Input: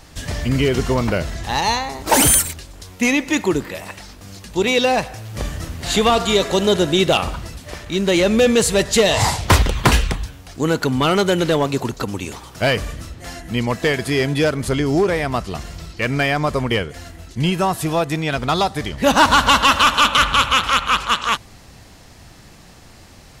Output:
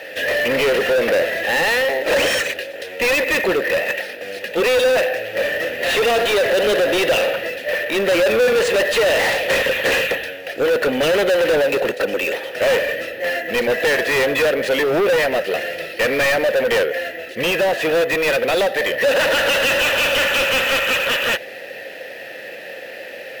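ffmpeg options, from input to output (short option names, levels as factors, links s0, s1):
-filter_complex "[0:a]asplit=3[s0][s1][s2];[s0]bandpass=f=530:t=q:w=8,volume=1[s3];[s1]bandpass=f=1840:t=q:w=8,volume=0.501[s4];[s2]bandpass=f=2480:t=q:w=8,volume=0.355[s5];[s3][s4][s5]amix=inputs=3:normalize=0,acrusher=samples=3:mix=1:aa=0.000001,asplit=2[s6][s7];[s7]highpass=f=720:p=1,volume=63.1,asoftclip=type=tanh:threshold=0.355[s8];[s6][s8]amix=inputs=2:normalize=0,lowpass=f=3800:p=1,volume=0.501"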